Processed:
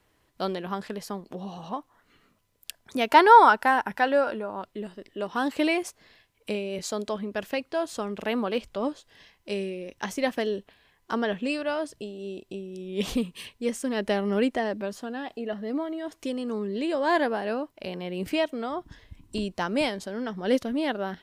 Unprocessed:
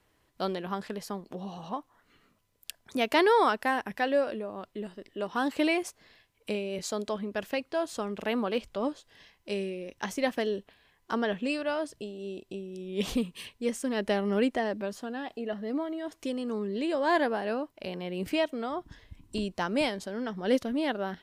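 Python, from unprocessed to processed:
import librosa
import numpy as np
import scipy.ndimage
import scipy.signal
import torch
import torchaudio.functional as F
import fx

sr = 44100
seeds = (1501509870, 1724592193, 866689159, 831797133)

y = fx.small_body(x, sr, hz=(920.0, 1400.0), ring_ms=20, db=12, at=(3.09, 4.62))
y = y * 10.0 ** (2.0 / 20.0)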